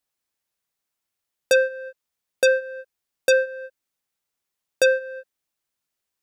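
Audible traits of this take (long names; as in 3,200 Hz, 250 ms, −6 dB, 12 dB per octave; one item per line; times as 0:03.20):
background noise floor −83 dBFS
spectral slope +1.0 dB per octave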